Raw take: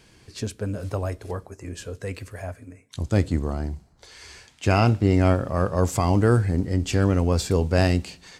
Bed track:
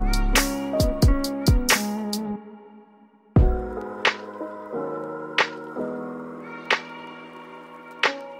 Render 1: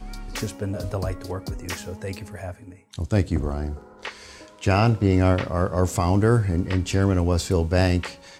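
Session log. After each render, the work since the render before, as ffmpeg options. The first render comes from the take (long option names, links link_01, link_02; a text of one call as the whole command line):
ffmpeg -i in.wav -i bed.wav -filter_complex "[1:a]volume=-14dB[link_01];[0:a][link_01]amix=inputs=2:normalize=0" out.wav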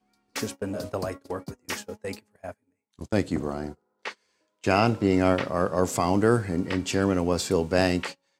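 ffmpeg -i in.wav -af "highpass=180,agate=range=-27dB:threshold=-34dB:ratio=16:detection=peak" out.wav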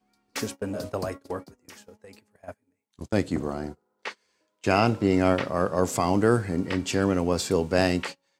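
ffmpeg -i in.wav -filter_complex "[0:a]asplit=3[link_01][link_02][link_03];[link_01]afade=type=out:start_time=1.44:duration=0.02[link_04];[link_02]acompressor=threshold=-44dB:ratio=8:attack=3.2:release=140:knee=1:detection=peak,afade=type=in:start_time=1.44:duration=0.02,afade=type=out:start_time=2.47:duration=0.02[link_05];[link_03]afade=type=in:start_time=2.47:duration=0.02[link_06];[link_04][link_05][link_06]amix=inputs=3:normalize=0" out.wav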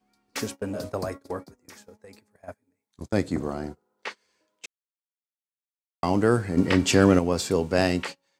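ffmpeg -i in.wav -filter_complex "[0:a]asettb=1/sr,asplit=3[link_01][link_02][link_03];[link_01]atrim=end=0.864[link_04];[link_02]atrim=start=0.86:end=3.42,asetpts=PTS-STARTPTS,afade=type=in:duration=0.004:curve=qsin,afade=type=out:start_time=2.556:duration=0.004:curve=qsin,equalizer=frequency=2900:width_type=o:width=0.22:gain=-8.5[link_05];[link_03]atrim=start=3.416[link_06];[link_04][link_05]acrossfade=duration=0.004:curve1=hsin:curve2=qsin[link_07];[link_07][link_06]acrossfade=duration=0.004:curve1=qsin:curve2=hsin,asettb=1/sr,asplit=3[link_08][link_09][link_10];[link_08]atrim=end=6.574[link_11];[link_09]atrim=start=6.57:end=7.19,asetpts=PTS-STARTPTS,afade=type=in:duration=0.004:curve=qsin,afade=type=out:start_time=0.616:duration=0.004:curve=qsin,acontrast=73[link_12];[link_10]atrim=start=7.186[link_13];[link_11][link_12]acrossfade=duration=0.004:curve1=hsin:curve2=qsin[link_14];[link_14][link_13]acrossfade=duration=0.004:curve1=qsin:curve2=hsin,asplit=3[link_15][link_16][link_17];[link_15]atrim=end=4.66,asetpts=PTS-STARTPTS,afade=type=out:start_time=4.656:duration=0.004:curve=hsin[link_18];[link_16]atrim=start=4.66:end=6.03,asetpts=PTS-STARTPTS,volume=0[link_19];[link_17]atrim=start=6.03,asetpts=PTS-STARTPTS,afade=type=in:duration=0.004:curve=hsin[link_20];[link_18][link_19][link_20]concat=n=3:v=0:a=1" out.wav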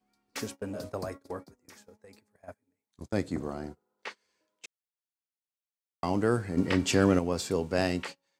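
ffmpeg -i in.wav -af "volume=-5.5dB" out.wav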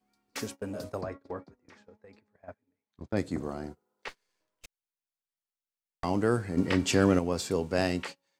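ffmpeg -i in.wav -filter_complex "[0:a]asettb=1/sr,asplit=3[link_01][link_02][link_03];[link_01]atrim=end=1.014[link_04];[link_02]atrim=start=1.01:end=3.17,asetpts=PTS-STARTPTS,afade=type=in:duration=0.004:curve=qsin,afade=type=out:start_time=2.156:duration=0.004:curve=qsin,lowpass=3100[link_05];[link_03]atrim=start=3.166[link_06];[link_04][link_05]acrossfade=duration=0.004:curve1=hsin:curve2=qsin[link_07];[link_07][link_06]acrossfade=duration=0.004:curve1=qsin:curve2=hsin,asettb=1/sr,asplit=3[link_08][link_09][link_10];[link_08]atrim=end=4.084[link_11];[link_09]atrim=start=4.08:end=6.04,asetpts=PTS-STARTPTS,afade=type=in:duration=0.004:curve=qsin,afade=type=out:start_time=1.956:duration=0.004:curve=qsin,aeval=exprs='max(val(0),0)':channel_layout=same[link_12];[link_10]atrim=start=6.036[link_13];[link_11][link_12]acrossfade=duration=0.004:curve1=hsin:curve2=qsin[link_14];[link_14][link_13]acrossfade=duration=0.004:curve1=qsin:curve2=hsin" out.wav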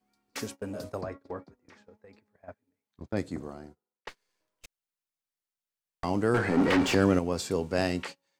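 ffmpeg -i in.wav -filter_complex "[0:a]asettb=1/sr,asplit=3[link_01][link_02][link_03];[link_01]atrim=end=6.344[link_04];[link_02]atrim=start=6.34:end=6.95,asetpts=PTS-STARTPTS,afade=type=in:duration=0.004:curve=qsin,afade=type=out:start_time=0.606:duration=0.004:curve=qsin,asplit=2[link_05][link_06];[link_06]highpass=frequency=720:poles=1,volume=27dB,asoftclip=type=tanh:threshold=-14.5dB[link_07];[link_05][link_07]amix=inputs=2:normalize=0,lowpass=frequency=1400:poles=1,volume=-6dB[link_08];[link_03]atrim=start=6.946[link_09];[link_04][link_08]acrossfade=duration=0.004:curve1=hsin:curve2=qsin[link_10];[link_10][link_09]acrossfade=duration=0.004:curve1=qsin:curve2=hsin,asplit=2[link_11][link_12];[link_11]atrim=end=4.07,asetpts=PTS-STARTPTS,afade=type=out:start_time=3.04:duration=1.03[link_13];[link_12]atrim=start=4.07,asetpts=PTS-STARTPTS,afade=type=in:duration=0.004:curve=hsin[link_14];[link_13][link_14]concat=n=2:v=0:a=1" out.wav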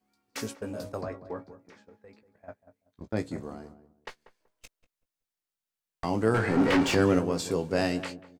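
ffmpeg -i in.wav -filter_complex "[0:a]asplit=2[link_01][link_02];[link_02]adelay=18,volume=-8.5dB[link_03];[link_01][link_03]amix=inputs=2:normalize=0,asplit=2[link_04][link_05];[link_05]adelay=190,lowpass=frequency=860:poles=1,volume=-12dB,asplit=2[link_06][link_07];[link_07]adelay=190,lowpass=frequency=860:poles=1,volume=0.26,asplit=2[link_08][link_09];[link_09]adelay=190,lowpass=frequency=860:poles=1,volume=0.26[link_10];[link_04][link_06][link_08][link_10]amix=inputs=4:normalize=0" out.wav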